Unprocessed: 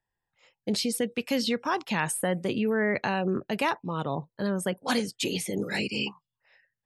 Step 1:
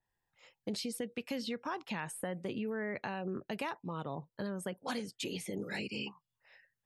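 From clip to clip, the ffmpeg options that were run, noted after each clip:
ffmpeg -i in.wav -af "acompressor=threshold=-40dB:ratio=2.5,adynamicequalizer=threshold=0.00158:dfrequency=3400:dqfactor=0.7:tfrequency=3400:tqfactor=0.7:attack=5:release=100:ratio=0.375:range=2.5:mode=cutabove:tftype=highshelf" out.wav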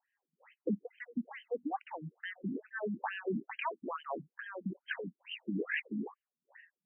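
ffmpeg -i in.wav -af "afftfilt=real='re*between(b*sr/1024,210*pow(2300/210,0.5+0.5*sin(2*PI*2.3*pts/sr))/1.41,210*pow(2300/210,0.5+0.5*sin(2*PI*2.3*pts/sr))*1.41)':imag='im*between(b*sr/1024,210*pow(2300/210,0.5+0.5*sin(2*PI*2.3*pts/sr))/1.41,210*pow(2300/210,0.5+0.5*sin(2*PI*2.3*pts/sr))*1.41)':win_size=1024:overlap=0.75,volume=7.5dB" out.wav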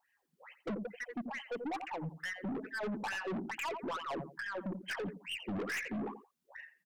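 ffmpeg -i in.wav -af "aecho=1:1:86|172:0.178|0.0391,aeval=exprs='(tanh(141*val(0)+0.1)-tanh(0.1))/141':channel_layout=same,volume=8dB" out.wav

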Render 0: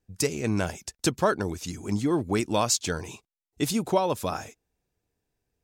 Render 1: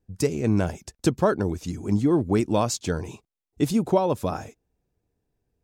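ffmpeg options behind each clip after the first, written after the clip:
ffmpeg -i in.wav -af "tiltshelf=frequency=970:gain=5.5" out.wav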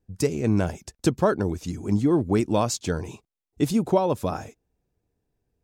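ffmpeg -i in.wav -af anull out.wav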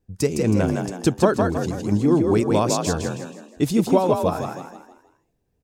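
ffmpeg -i in.wav -filter_complex "[0:a]asplit=6[link_01][link_02][link_03][link_04][link_05][link_06];[link_02]adelay=160,afreqshift=45,volume=-4dB[link_07];[link_03]adelay=320,afreqshift=90,volume=-12dB[link_08];[link_04]adelay=480,afreqshift=135,volume=-19.9dB[link_09];[link_05]adelay=640,afreqshift=180,volume=-27.9dB[link_10];[link_06]adelay=800,afreqshift=225,volume=-35.8dB[link_11];[link_01][link_07][link_08][link_09][link_10][link_11]amix=inputs=6:normalize=0,volume=2dB" out.wav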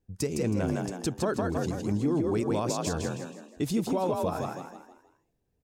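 ffmpeg -i in.wav -af "alimiter=limit=-14dB:level=0:latency=1:release=76,volume=-5dB" out.wav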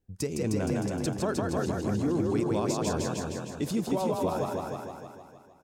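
ffmpeg -i in.wav -af "aecho=1:1:308|616|924|1232|1540:0.631|0.24|0.0911|0.0346|0.0132,volume=-1.5dB" out.wav

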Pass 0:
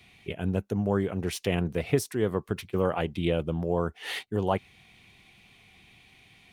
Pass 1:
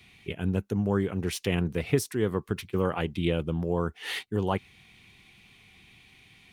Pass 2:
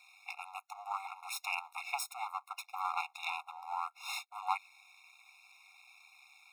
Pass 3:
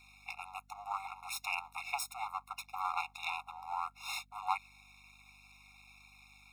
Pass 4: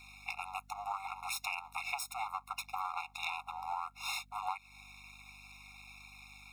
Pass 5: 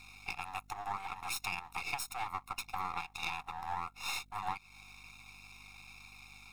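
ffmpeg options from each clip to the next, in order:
ffmpeg -i in.wav -af "equalizer=frequency=640:width=2.1:gain=-6.5,volume=1dB" out.wav
ffmpeg -i in.wav -af "aeval=exprs='max(val(0),0)':channel_layout=same,afftfilt=real='re*eq(mod(floor(b*sr/1024/710),2),1)':imag='im*eq(mod(floor(b*sr/1024/710),2),1)':win_size=1024:overlap=0.75,volume=3dB" out.wav
ffmpeg -i in.wav -af "aeval=exprs='val(0)+0.000501*(sin(2*PI*50*n/s)+sin(2*PI*2*50*n/s)/2+sin(2*PI*3*50*n/s)/3+sin(2*PI*4*50*n/s)/4+sin(2*PI*5*50*n/s)/5)':channel_layout=same" out.wav
ffmpeg -i in.wav -af "acompressor=threshold=-40dB:ratio=6,volume=5.5dB" out.wav
ffmpeg -i in.wav -af "aeval=exprs='if(lt(val(0),0),0.447*val(0),val(0))':channel_layout=same,volume=2.5dB" out.wav

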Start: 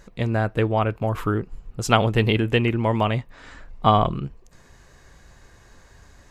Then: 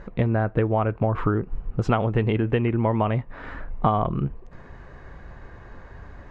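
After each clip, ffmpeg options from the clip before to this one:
ffmpeg -i in.wav -af "lowpass=1700,acompressor=threshold=-27dB:ratio=6,volume=8.5dB" out.wav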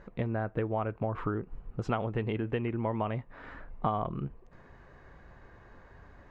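ffmpeg -i in.wav -af "lowshelf=frequency=120:gain=-5,volume=-8.5dB" out.wav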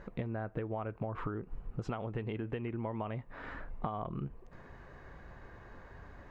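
ffmpeg -i in.wav -af "acompressor=threshold=-36dB:ratio=6,volume=2dB" out.wav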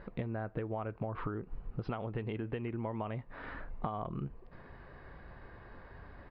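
ffmpeg -i in.wav -af "aresample=11025,aresample=44100" out.wav

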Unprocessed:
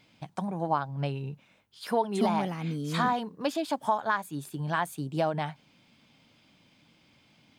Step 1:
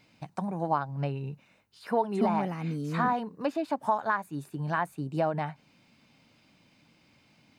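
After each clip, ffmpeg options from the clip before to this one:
ffmpeg -i in.wav -filter_complex "[0:a]bandreject=frequency=3300:width=6.5,acrossover=split=2600[link_01][link_02];[link_02]acompressor=threshold=-55dB:ratio=6[link_03];[link_01][link_03]amix=inputs=2:normalize=0" out.wav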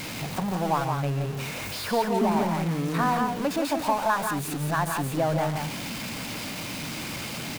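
ffmpeg -i in.wav -filter_complex "[0:a]aeval=exprs='val(0)+0.5*0.0335*sgn(val(0))':channel_layout=same,asplit=2[link_01][link_02];[link_02]aecho=0:1:139.9|172:0.251|0.562[link_03];[link_01][link_03]amix=inputs=2:normalize=0" out.wav

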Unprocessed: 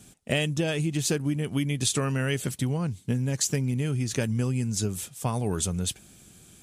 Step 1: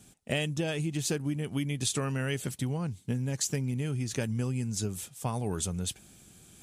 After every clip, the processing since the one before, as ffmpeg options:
ffmpeg -i in.wav -af "equalizer=frequency=820:width=5.8:gain=2.5,areverse,acompressor=mode=upward:threshold=-45dB:ratio=2.5,areverse,volume=-4.5dB" out.wav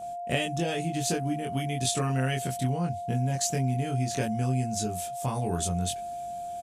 ffmpeg -i in.wav -filter_complex "[0:a]aeval=exprs='val(0)+0.0126*sin(2*PI*700*n/s)':channel_layout=same,asplit=2[link_01][link_02];[link_02]adelay=23,volume=-2dB[link_03];[link_01][link_03]amix=inputs=2:normalize=0" out.wav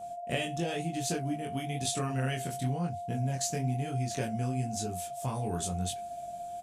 ffmpeg -i in.wav -af "flanger=delay=10:depth=9.1:regen=-57:speed=1:shape=sinusoidal" out.wav

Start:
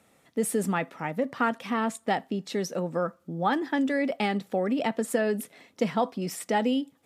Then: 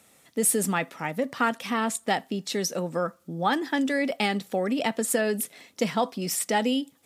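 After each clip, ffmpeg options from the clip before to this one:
ffmpeg -i in.wav -af "highshelf=frequency=3000:gain=11" out.wav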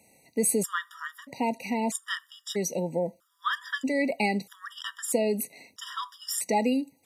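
ffmpeg -i in.wav -af "afftfilt=real='re*gt(sin(2*PI*0.78*pts/sr)*(1-2*mod(floor(b*sr/1024/960),2)),0)':imag='im*gt(sin(2*PI*0.78*pts/sr)*(1-2*mod(floor(b*sr/1024/960),2)),0)':win_size=1024:overlap=0.75" out.wav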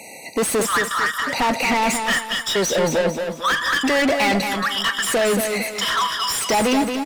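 ffmpeg -i in.wav -filter_complex "[0:a]asplit=2[link_01][link_02];[link_02]highpass=frequency=720:poles=1,volume=33dB,asoftclip=type=tanh:threshold=-12dB[link_03];[link_01][link_03]amix=inputs=2:normalize=0,lowpass=frequency=4200:poles=1,volume=-6dB,asplit=2[link_04][link_05];[link_05]aecho=0:1:225|450|675|900|1125:0.501|0.2|0.0802|0.0321|0.0128[link_06];[link_04][link_06]amix=inputs=2:normalize=0" out.wav

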